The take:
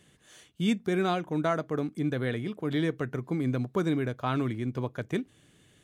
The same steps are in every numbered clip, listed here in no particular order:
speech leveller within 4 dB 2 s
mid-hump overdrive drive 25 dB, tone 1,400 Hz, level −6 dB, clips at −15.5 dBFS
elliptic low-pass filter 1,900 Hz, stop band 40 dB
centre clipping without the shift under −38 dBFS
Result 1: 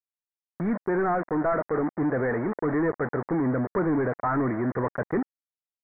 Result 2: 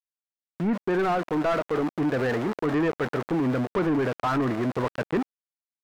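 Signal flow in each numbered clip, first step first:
speech leveller, then centre clipping without the shift, then mid-hump overdrive, then elliptic low-pass filter
elliptic low-pass filter, then centre clipping without the shift, then speech leveller, then mid-hump overdrive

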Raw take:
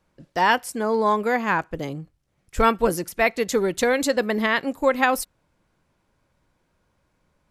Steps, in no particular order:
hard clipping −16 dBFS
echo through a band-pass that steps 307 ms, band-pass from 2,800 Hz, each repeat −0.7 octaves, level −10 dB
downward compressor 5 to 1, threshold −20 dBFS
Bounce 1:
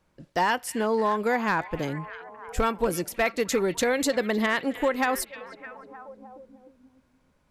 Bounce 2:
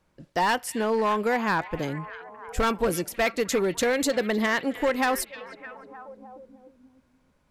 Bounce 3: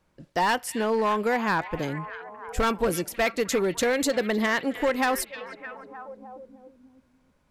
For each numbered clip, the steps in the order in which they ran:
downward compressor, then hard clipping, then echo through a band-pass that steps
hard clipping, then downward compressor, then echo through a band-pass that steps
hard clipping, then echo through a band-pass that steps, then downward compressor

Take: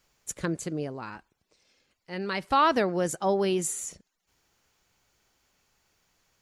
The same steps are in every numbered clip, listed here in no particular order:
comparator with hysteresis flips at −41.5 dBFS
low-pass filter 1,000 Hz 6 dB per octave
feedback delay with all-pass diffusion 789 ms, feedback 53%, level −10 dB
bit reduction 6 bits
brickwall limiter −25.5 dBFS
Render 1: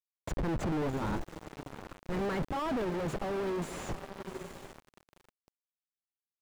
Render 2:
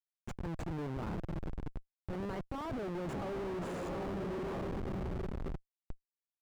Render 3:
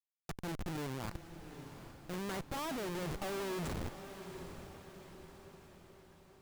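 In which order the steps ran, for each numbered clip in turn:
comparator with hysteresis, then feedback delay with all-pass diffusion, then bit reduction, then brickwall limiter, then low-pass filter
feedback delay with all-pass diffusion, then brickwall limiter, then bit reduction, then comparator with hysteresis, then low-pass filter
bit reduction, then low-pass filter, then brickwall limiter, then comparator with hysteresis, then feedback delay with all-pass diffusion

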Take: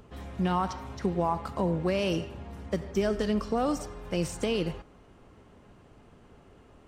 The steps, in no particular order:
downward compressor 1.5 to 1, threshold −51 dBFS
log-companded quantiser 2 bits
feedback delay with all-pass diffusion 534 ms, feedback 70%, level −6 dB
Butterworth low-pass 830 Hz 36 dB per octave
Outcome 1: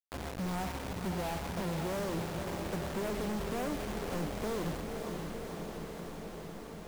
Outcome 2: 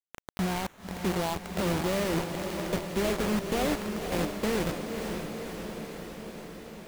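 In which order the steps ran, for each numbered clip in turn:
Butterworth low-pass, then log-companded quantiser, then feedback delay with all-pass diffusion, then downward compressor
downward compressor, then Butterworth low-pass, then log-companded quantiser, then feedback delay with all-pass diffusion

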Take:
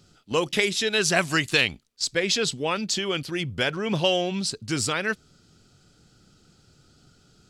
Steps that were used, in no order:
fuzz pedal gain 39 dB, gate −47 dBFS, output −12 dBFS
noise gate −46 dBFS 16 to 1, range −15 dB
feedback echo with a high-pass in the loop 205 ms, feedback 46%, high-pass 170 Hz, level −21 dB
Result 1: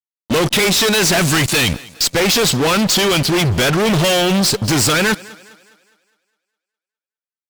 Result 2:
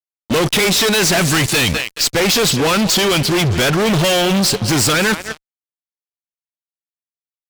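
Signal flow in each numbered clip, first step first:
noise gate, then fuzz pedal, then feedback echo with a high-pass in the loop
feedback echo with a high-pass in the loop, then noise gate, then fuzz pedal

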